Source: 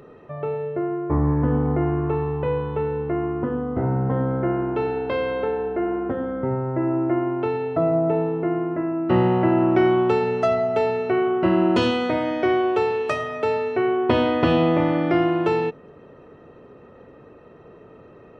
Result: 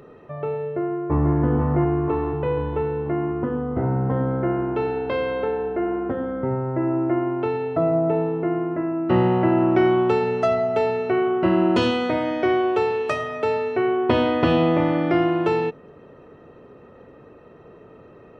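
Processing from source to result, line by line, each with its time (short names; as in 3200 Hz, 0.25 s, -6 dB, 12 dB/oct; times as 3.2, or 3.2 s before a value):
0.62–1.35 echo throw 0.49 s, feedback 60%, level -3.5 dB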